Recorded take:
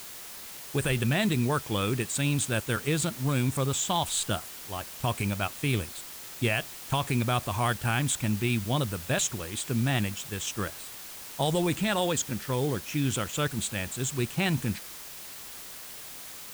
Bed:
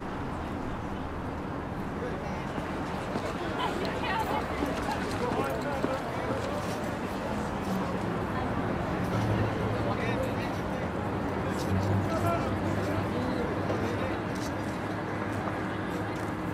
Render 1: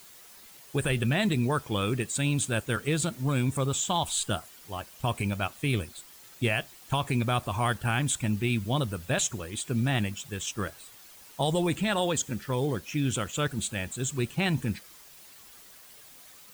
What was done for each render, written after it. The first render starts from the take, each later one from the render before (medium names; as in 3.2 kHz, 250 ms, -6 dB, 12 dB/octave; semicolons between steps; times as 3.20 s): noise reduction 10 dB, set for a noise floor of -43 dBFS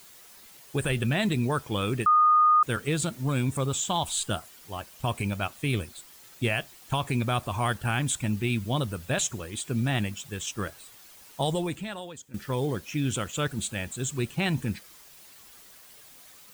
2.06–2.63 s: bleep 1.23 kHz -16 dBFS; 11.47–12.34 s: fade out quadratic, to -17.5 dB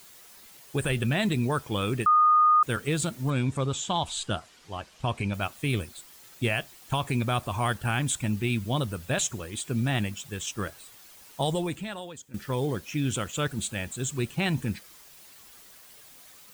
3.30–5.34 s: low-pass 6.1 kHz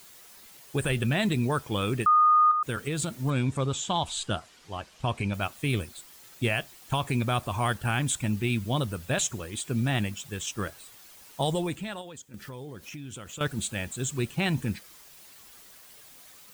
2.51–3.23 s: compression 5:1, threshold -25 dBFS; 12.01–13.41 s: compression 5:1, threshold -38 dBFS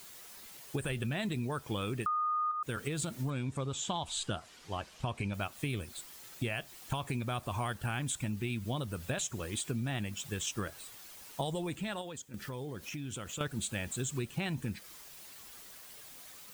compression, threshold -32 dBFS, peak gain reduction 12.5 dB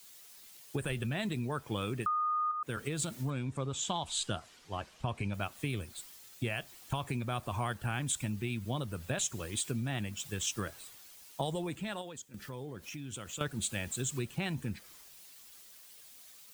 three bands expanded up and down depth 40%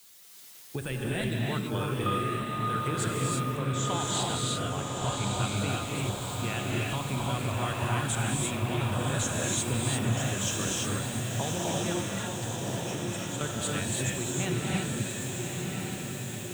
on a send: echo that smears into a reverb 1115 ms, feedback 63%, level -4 dB; on the sum: gated-style reverb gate 370 ms rising, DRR -3 dB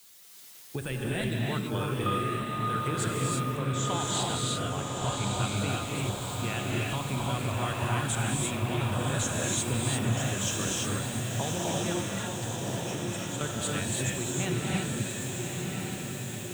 no audible change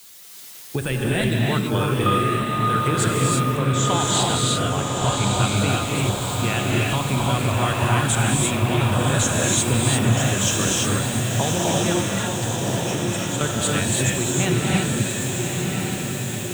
trim +9.5 dB